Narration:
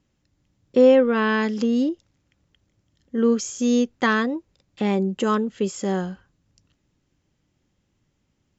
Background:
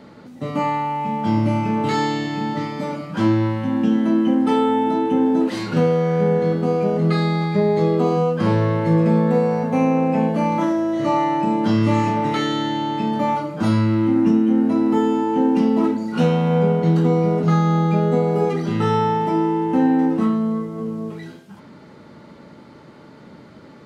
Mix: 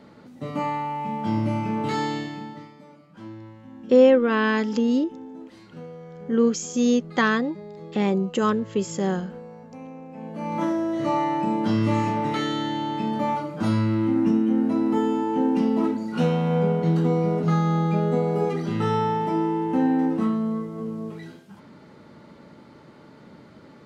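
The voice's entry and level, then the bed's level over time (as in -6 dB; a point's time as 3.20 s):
3.15 s, -0.5 dB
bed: 2.18 s -5.5 dB
2.83 s -22.5 dB
10.11 s -22.5 dB
10.63 s -4.5 dB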